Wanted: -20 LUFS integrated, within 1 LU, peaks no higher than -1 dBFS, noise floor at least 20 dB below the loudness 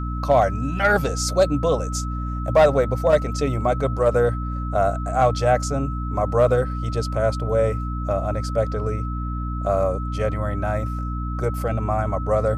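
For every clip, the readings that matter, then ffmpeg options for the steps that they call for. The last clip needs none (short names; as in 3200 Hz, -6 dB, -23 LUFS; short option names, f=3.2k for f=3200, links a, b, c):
hum 60 Hz; harmonics up to 300 Hz; hum level -24 dBFS; steady tone 1300 Hz; tone level -33 dBFS; loudness -22.0 LUFS; peak -6.5 dBFS; loudness target -20.0 LUFS
-> -af "bandreject=f=60:t=h:w=4,bandreject=f=120:t=h:w=4,bandreject=f=180:t=h:w=4,bandreject=f=240:t=h:w=4,bandreject=f=300:t=h:w=4"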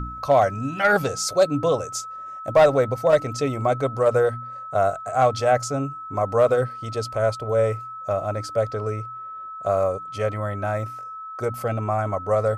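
hum none; steady tone 1300 Hz; tone level -33 dBFS
-> -af "bandreject=f=1.3k:w=30"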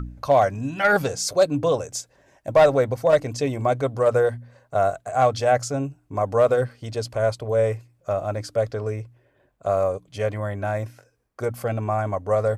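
steady tone none; loudness -23.0 LUFS; peak -8.0 dBFS; loudness target -20.0 LUFS
-> -af "volume=3dB"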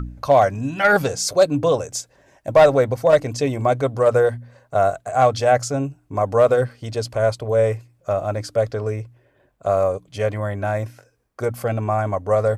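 loudness -20.0 LUFS; peak -5.0 dBFS; noise floor -62 dBFS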